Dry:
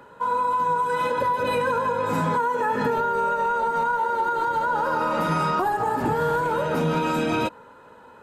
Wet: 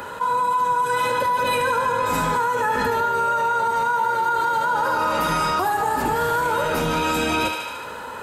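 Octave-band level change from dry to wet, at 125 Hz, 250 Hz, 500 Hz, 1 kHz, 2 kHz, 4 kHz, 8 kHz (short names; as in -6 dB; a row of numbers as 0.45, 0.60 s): -2.0 dB, -1.0 dB, 0.0 dB, +2.5 dB, +4.5 dB, +8.0 dB, n/a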